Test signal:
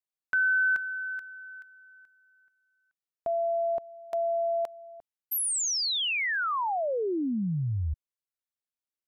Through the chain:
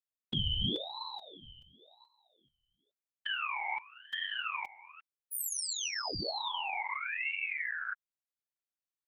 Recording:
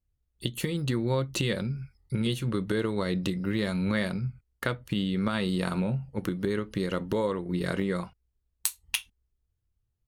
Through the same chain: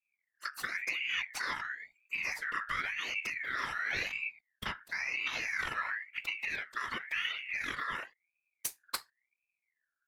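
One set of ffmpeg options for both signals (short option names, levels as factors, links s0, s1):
-af "afftfilt=real='hypot(re,im)*cos(2*PI*random(0))':imag='hypot(re,im)*sin(2*PI*random(1))':win_size=512:overlap=0.75,acontrast=78,aeval=exprs='val(0)*sin(2*PI*2000*n/s+2000*0.25/0.95*sin(2*PI*0.95*n/s))':c=same,volume=0.501"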